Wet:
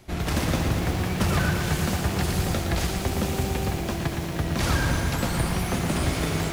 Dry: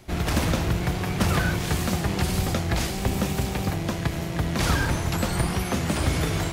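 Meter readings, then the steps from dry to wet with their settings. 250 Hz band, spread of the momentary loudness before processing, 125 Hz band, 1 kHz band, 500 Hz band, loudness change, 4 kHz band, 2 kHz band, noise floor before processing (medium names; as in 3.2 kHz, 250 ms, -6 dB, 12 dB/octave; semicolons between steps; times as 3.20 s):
-0.5 dB, 4 LU, -0.5 dB, -0.5 dB, 0.0 dB, -0.5 dB, -0.5 dB, -0.5 dB, -30 dBFS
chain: bit-crushed delay 116 ms, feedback 80%, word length 7-bit, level -6.5 dB; trim -2 dB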